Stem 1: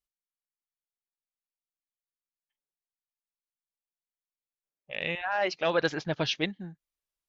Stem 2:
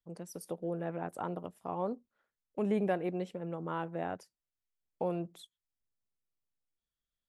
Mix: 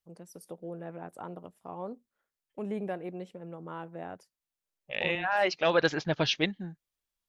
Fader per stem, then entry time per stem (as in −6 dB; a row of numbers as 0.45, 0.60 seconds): +1.5, −4.0 decibels; 0.00, 0.00 seconds